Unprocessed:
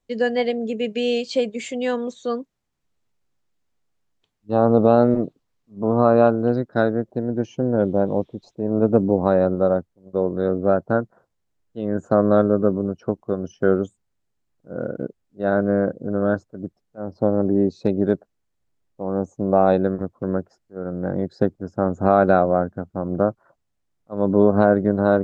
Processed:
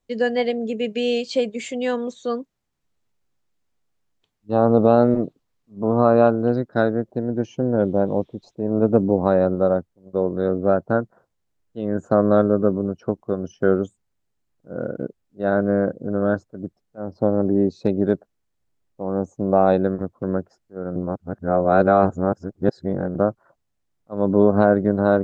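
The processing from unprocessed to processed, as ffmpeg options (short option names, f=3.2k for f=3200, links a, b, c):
-filter_complex "[0:a]asplit=3[a][b][c];[a]atrim=end=20.962[d];[b]atrim=start=20.958:end=23.152,asetpts=PTS-STARTPTS,areverse[e];[c]atrim=start=23.148[f];[d][e]acrossfade=d=0.004:c1=hsin:c2=hsin[g];[g][f]acrossfade=d=0.004:c1=hsin:c2=hsin"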